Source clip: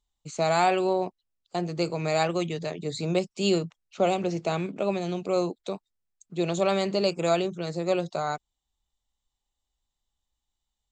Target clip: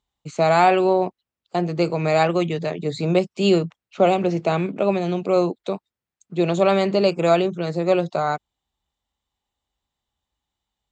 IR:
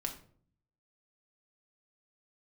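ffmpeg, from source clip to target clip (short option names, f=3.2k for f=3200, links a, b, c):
-af "highpass=70,bass=f=250:g=0,treble=f=4k:g=-10,volume=7dB"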